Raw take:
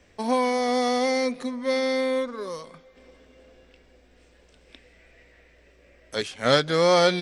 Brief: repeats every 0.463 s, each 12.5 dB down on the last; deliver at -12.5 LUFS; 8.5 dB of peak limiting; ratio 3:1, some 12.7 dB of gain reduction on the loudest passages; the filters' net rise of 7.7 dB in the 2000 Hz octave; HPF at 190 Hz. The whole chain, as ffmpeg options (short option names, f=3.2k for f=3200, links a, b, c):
-af "highpass=190,equalizer=f=2k:t=o:g=9,acompressor=threshold=-30dB:ratio=3,alimiter=limit=-23dB:level=0:latency=1,aecho=1:1:463|926|1389:0.237|0.0569|0.0137,volume=20.5dB"